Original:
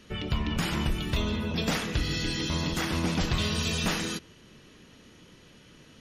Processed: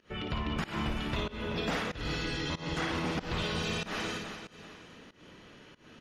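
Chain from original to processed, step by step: on a send: loudspeakers at several distances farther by 19 m -5 dB, 62 m -12 dB; on the sum: overdrive pedal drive 9 dB, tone 1400 Hz, clips at -14.5 dBFS; in parallel at -1 dB: compressor, threshold -38 dBFS, peak gain reduction 12.5 dB; on the sum: feedback echo 0.382 s, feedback 35%, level -11 dB; pump 94 bpm, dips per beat 1, -21 dB, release 0.208 s; 2.46–2.97 LPF 11000 Hz 24 dB/oct; gain -5 dB

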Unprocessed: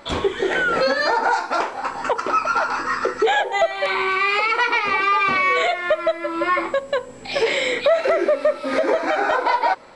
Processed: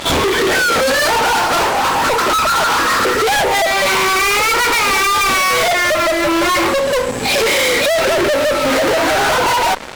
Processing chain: reverse echo 57 ms -19.5 dB; fuzz box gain 38 dB, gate -43 dBFS

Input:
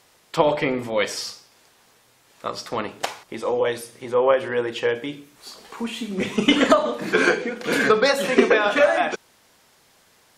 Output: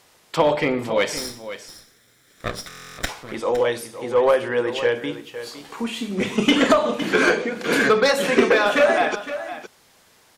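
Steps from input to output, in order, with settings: 1.17–3.09 minimum comb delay 0.55 ms; in parallel at -9 dB: wavefolder -14.5 dBFS; on the sum: echo 0.511 s -12.5 dB; stuck buffer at 2.68, samples 1024, times 12; gain -1 dB

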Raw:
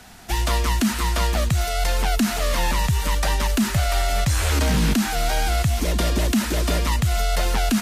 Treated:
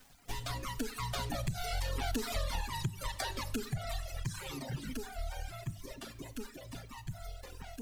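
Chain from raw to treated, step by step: minimum comb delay 7.4 ms; Doppler pass-by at 2.37, 8 m/s, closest 3 m; requantised 10-bit, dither none; reverb removal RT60 1.5 s; dynamic EQ 4000 Hz, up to +4 dB, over -50 dBFS, Q 2.4; reverb removal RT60 1.5 s; low shelf 100 Hz +10.5 dB; notches 50/100 Hz; Schroeder reverb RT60 0.81 s, combs from 28 ms, DRR 14 dB; compressor 6:1, threshold -33 dBFS, peak gain reduction 14 dB; gain +1 dB

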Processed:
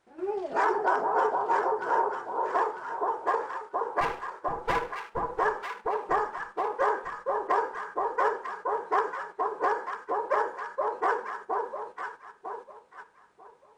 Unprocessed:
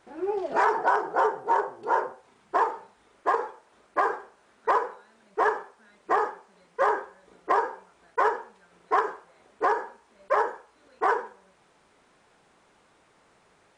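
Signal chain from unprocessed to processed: 4.01–5.39 minimum comb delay 6 ms; echo with dull and thin repeats by turns 0.473 s, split 1100 Hz, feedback 64%, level -2 dB; gate -39 dBFS, range -7 dB; gain -3 dB

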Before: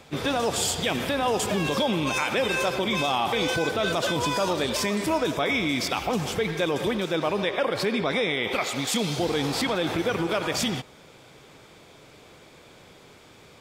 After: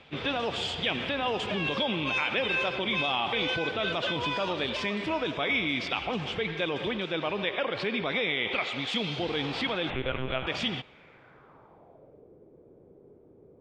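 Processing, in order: 9.9–10.47 monotone LPC vocoder at 8 kHz 130 Hz; low-pass sweep 3000 Hz -> 420 Hz, 10.83–12.3; gain -6 dB

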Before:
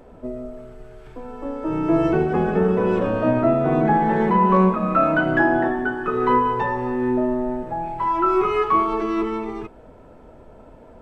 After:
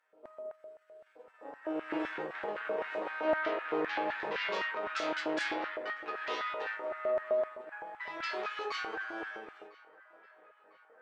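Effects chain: notches 60/120/180/240/300/360/420 Hz; added harmonics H 6 -17 dB, 8 -9 dB, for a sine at -5 dBFS; resonator bank G#2 fifth, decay 0.25 s; LFO high-pass square 3.9 Hz 460–1600 Hz; on a send: narrowing echo 1.001 s, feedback 66%, band-pass 1300 Hz, level -21 dB; on the sum: gain -8.5 dB

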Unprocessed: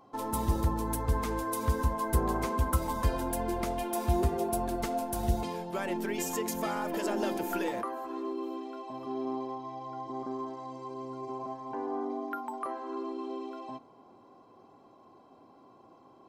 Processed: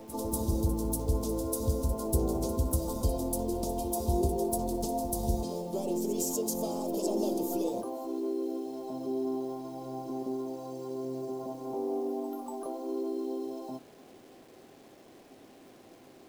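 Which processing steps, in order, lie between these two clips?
Chebyshev band-stop 550–5200 Hz, order 2; low shelf 490 Hz -2 dB; notches 60/120/180/240/300/360/420/480/540/600 Hz; in parallel at -2 dB: compressor 10:1, threshold -41 dBFS, peak gain reduction 16 dB; on the sum: bit-crush 10-bit; harmoniser +5 st -17 dB; pre-echo 0.24 s -13 dB; gain +1.5 dB

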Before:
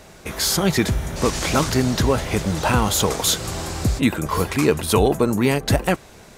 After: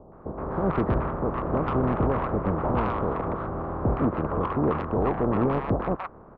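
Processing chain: spectral contrast lowered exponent 0.43; Chebyshev low-pass 1200 Hz, order 4; limiter -14 dBFS, peak gain reduction 8.5 dB; soft clip -18 dBFS, distortion -16 dB; bands offset in time lows, highs 0.12 s, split 850 Hz; gain +3.5 dB

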